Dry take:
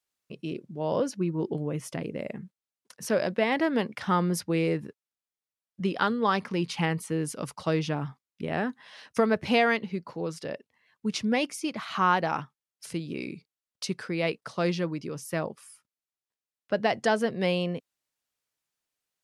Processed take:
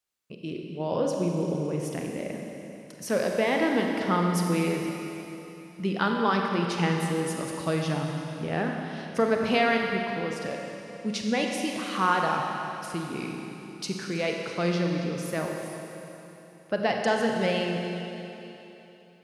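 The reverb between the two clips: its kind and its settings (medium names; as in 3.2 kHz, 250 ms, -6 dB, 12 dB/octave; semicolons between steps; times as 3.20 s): Schroeder reverb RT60 3.3 s, combs from 31 ms, DRR 1 dB; trim -1 dB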